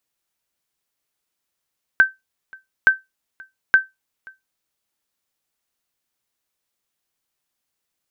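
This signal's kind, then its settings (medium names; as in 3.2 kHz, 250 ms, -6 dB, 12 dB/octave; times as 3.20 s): sonar ping 1.55 kHz, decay 0.18 s, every 0.87 s, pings 3, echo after 0.53 s, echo -27.5 dB -4 dBFS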